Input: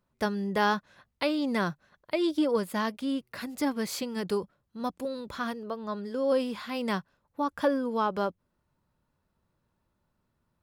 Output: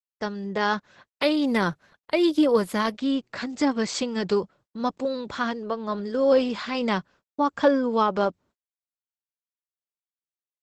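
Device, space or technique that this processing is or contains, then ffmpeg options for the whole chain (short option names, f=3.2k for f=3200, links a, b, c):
video call: -af "highpass=f=120:p=1,dynaudnorm=f=120:g=13:m=7dB,agate=range=-49dB:threshold=-51dB:ratio=16:detection=peak" -ar 48000 -c:a libopus -b:a 12k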